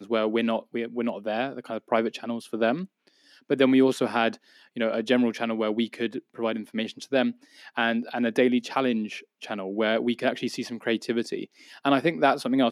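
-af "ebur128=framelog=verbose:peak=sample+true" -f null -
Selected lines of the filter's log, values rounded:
Integrated loudness:
  I:         -26.4 LUFS
  Threshold: -36.7 LUFS
Loudness range:
  LRA:         3.1 LU
  Threshold: -46.7 LUFS
  LRA low:   -28.3 LUFS
  LRA high:  -25.2 LUFS
Sample peak:
  Peak:       -6.1 dBFS
True peak:
  Peak:       -6.1 dBFS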